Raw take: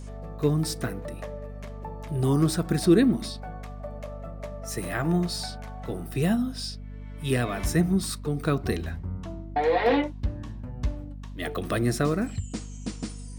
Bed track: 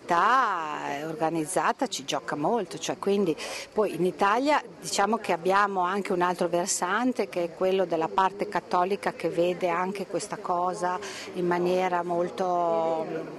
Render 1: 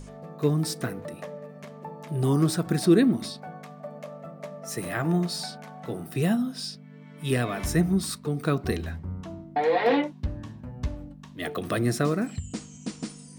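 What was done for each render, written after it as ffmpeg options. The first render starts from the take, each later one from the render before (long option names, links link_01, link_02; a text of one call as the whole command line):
ffmpeg -i in.wav -af "bandreject=frequency=50:width_type=h:width=6,bandreject=frequency=100:width_type=h:width=6" out.wav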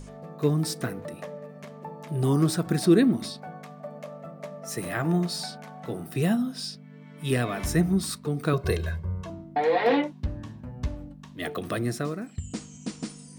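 ffmpeg -i in.wav -filter_complex "[0:a]asettb=1/sr,asplit=3[link_01][link_02][link_03];[link_01]atrim=end=8.534[link_04];[link_02]atrim=start=8.53:end=9.3,asetpts=PTS-STARTPTS,afade=type=in:duration=0.004:curve=qsin,afade=type=out:start_time=0.766:duration=0.004:curve=qsin,aecho=1:1:1.9:0.9,atrim=end_sample=33957[link_05];[link_03]atrim=start=9.296[link_06];[link_04][link_05]acrossfade=duration=0.004:curve1=hsin:curve2=qsin[link_07];[link_07][link_06]acrossfade=duration=0.004:curve1=qsin:curve2=hsin,asplit=2[link_08][link_09];[link_08]atrim=end=12.38,asetpts=PTS-STARTPTS,afade=type=out:start_time=11.44:duration=0.94:silence=0.266073[link_10];[link_09]atrim=start=12.38,asetpts=PTS-STARTPTS,afade=type=in:duration=0.004:curve=hsin:silence=0.266073[link_11];[link_10][link_11]concat=n=2:v=0:a=1" out.wav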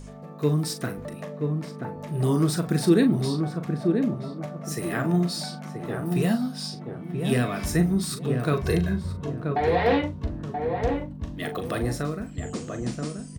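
ffmpeg -i in.wav -filter_complex "[0:a]asplit=2[link_01][link_02];[link_02]adelay=40,volume=-9dB[link_03];[link_01][link_03]amix=inputs=2:normalize=0,asplit=2[link_04][link_05];[link_05]adelay=980,lowpass=frequency=1100:poles=1,volume=-4dB,asplit=2[link_06][link_07];[link_07]adelay=980,lowpass=frequency=1100:poles=1,volume=0.33,asplit=2[link_08][link_09];[link_09]adelay=980,lowpass=frequency=1100:poles=1,volume=0.33,asplit=2[link_10][link_11];[link_11]adelay=980,lowpass=frequency=1100:poles=1,volume=0.33[link_12];[link_04][link_06][link_08][link_10][link_12]amix=inputs=5:normalize=0" out.wav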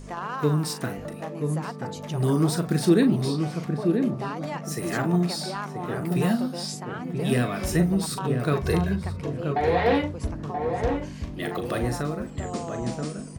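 ffmpeg -i in.wav -i bed.wav -filter_complex "[1:a]volume=-11.5dB[link_01];[0:a][link_01]amix=inputs=2:normalize=0" out.wav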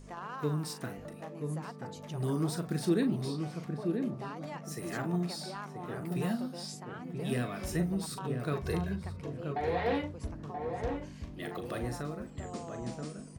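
ffmpeg -i in.wav -af "volume=-9.5dB" out.wav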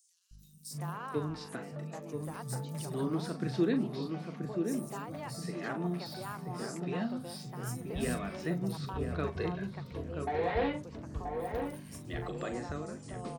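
ffmpeg -i in.wav -filter_complex "[0:a]acrossover=split=150|5200[link_01][link_02][link_03];[link_01]adelay=310[link_04];[link_02]adelay=710[link_05];[link_04][link_05][link_03]amix=inputs=3:normalize=0" out.wav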